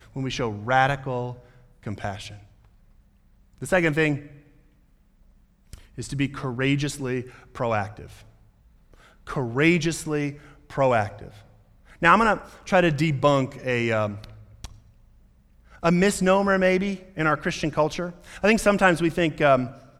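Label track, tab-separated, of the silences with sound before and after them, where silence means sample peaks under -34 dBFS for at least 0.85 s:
2.350000	3.620000	silence
4.250000	5.730000	silence
8.060000	9.270000	silence
14.660000	15.830000	silence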